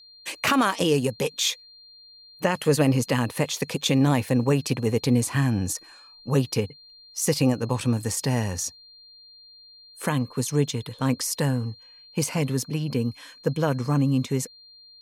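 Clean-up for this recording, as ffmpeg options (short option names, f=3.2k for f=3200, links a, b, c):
-af "bandreject=f=4.2k:w=30"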